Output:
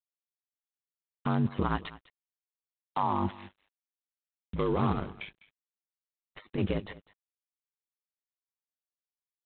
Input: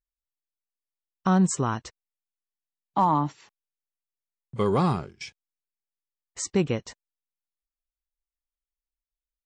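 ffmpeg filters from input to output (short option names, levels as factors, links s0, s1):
-filter_complex "[0:a]asettb=1/sr,asplit=3[s0][s1][s2];[s0]atrim=end=1.784[s3];[s1]atrim=start=1.78:end=3.03,asetpts=PTS-STARTPTS,afade=t=in:d=0.004:c=qsin,afade=t=out:st=1.246:d=0.004:c=qsin,tiltshelf=f=860:g=-6[s4];[s2]atrim=start=3.026[s5];[s3][s4]acrossfade=d=0.004:c1=hsin:c2=qsin[s6];[s6][s5]acrossfade=d=0.004:c1=qsin:c2=hsin,asettb=1/sr,asplit=3[s7][s8][s9];[s7]atrim=end=5.044[s10];[s8]atrim=start=5.04:end=6.58,asetpts=PTS-STARTPTS,afade=t=in:d=0.004:c=qsin,afade=t=out:st=1.536:d=0.004:c=qsin,acompressor=threshold=0.0112:ratio=6[s11];[s9]atrim=start=6.576[s12];[s10][s11]acrossfade=d=0.004:c1=hsin:c2=qsin[s13];[s13][s12]acrossfade=d=0.004:c1=qsin:c2=hsin,alimiter=limit=0.0668:level=0:latency=1:release=29,aeval=exprs='val(0)*sin(2*PI*50*n/s)':c=same,asplit=2[s14][s15];[s15]aecho=0:1:202:0.112[s16];[s14][s16]amix=inputs=2:normalize=0,volume=2" -ar 8000 -c:a adpcm_g726 -b:a 24k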